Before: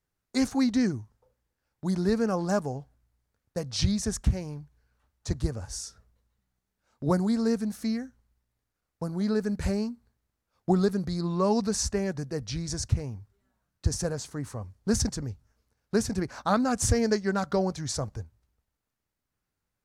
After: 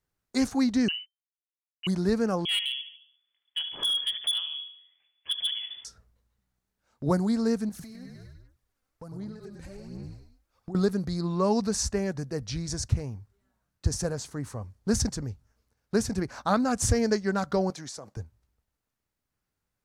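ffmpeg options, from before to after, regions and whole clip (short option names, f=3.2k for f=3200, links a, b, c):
-filter_complex "[0:a]asettb=1/sr,asplit=3[a][b][c];[a]atrim=end=0.884[d];[b]atrim=start=0.88:end=1.87,asetpts=PTS-STARTPTS,afade=t=in:d=0.004:c=qsin,afade=t=out:st=0.986:d=0.004:c=qsin,aeval=exprs='sgn(val(0))*max(abs(val(0))-0.00251,0)':c=same,lowpass=f=2.6k:t=q:w=0.5098,lowpass=f=2.6k:t=q:w=0.6013,lowpass=f=2.6k:t=q:w=0.9,lowpass=f=2.6k:t=q:w=2.563,afreqshift=-3100[e];[c]atrim=start=1.866[f];[d][e]acrossfade=d=0.004:c1=hsin:c2=qsin[g];[g][f]acrossfade=d=0.004:c1=qsin:c2=hsin,asettb=1/sr,asplit=3[h][i][j];[h]atrim=end=2.454[k];[i]atrim=start=2.45:end=5.85,asetpts=PTS-STARTPTS,afade=t=in:d=0.004:c=qsin,afade=t=out:st=3.396:d=0.004:c=qsin,lowpass=f=3k:t=q:w=0.5098,lowpass=f=3k:t=q:w=0.6013,lowpass=f=3k:t=q:w=0.9,lowpass=f=3k:t=q:w=2.563,afreqshift=-3500,aecho=1:1:74|148|222|296|370:0.282|0.141|0.0705|0.0352|0.0176,atrim=end_sample=149940,asoftclip=type=hard:threshold=-23dB[l];[j]atrim=start=5.846[m];[k][l]acrossfade=d=0.004:c1=hsin:c2=qsin[n];[n][m]acrossfade=d=0.004:c1=qsin:c2=hsin,asettb=1/sr,asplit=3[o][p][q];[o]atrim=end=7.694[r];[p]atrim=start=7.69:end=10.75,asetpts=PTS-STARTPTS,afade=t=in:d=0.004:c=qsin,afade=t=out:st=3.056:d=0.004:c=qsin,asplit=6[s][t][u][v][w][x];[t]adelay=100,afreqshift=-37,volume=-5dB[y];[u]adelay=200,afreqshift=-74,volume=-12.1dB[z];[v]adelay=300,afreqshift=-111,volume=-19.3dB[aa];[w]adelay=400,afreqshift=-148,volume=-26.4dB[ab];[x]adelay=500,afreqshift=-185,volume=-33.5dB[ac];[s][y][z][aa][ab][ac]amix=inputs=6:normalize=0,atrim=end_sample=134946,acompressor=threshold=-39dB:ratio=16:attack=3.2:release=140:knee=1:detection=peak,aphaser=in_gain=1:out_gain=1:delay=3.9:decay=0.48:speed=1.3:type=sinusoidal[ad];[q]atrim=start=10.746[ae];[r][ad]acrossfade=d=0.004:c1=hsin:c2=qsin[af];[af][ae]acrossfade=d=0.004:c1=qsin:c2=hsin,asettb=1/sr,asplit=3[ag][ah][ai];[ag]atrim=end=17.704[aj];[ah]atrim=start=17.7:end=18.17,asetpts=PTS-STARTPTS,afade=t=in:d=0.004:c=qsin,afade=t=out:st=0.466:d=0.004:c=qsin,highpass=250,agate=range=-33dB:threshold=-56dB:ratio=3:release=100:detection=peak,acompressor=threshold=-36dB:ratio=10:attack=3.2:release=140:knee=1:detection=peak[ak];[ai]atrim=start=18.166[al];[aj][ak]acrossfade=d=0.004:c1=hsin:c2=qsin[am];[am][al]acrossfade=d=0.004:c1=qsin:c2=hsin"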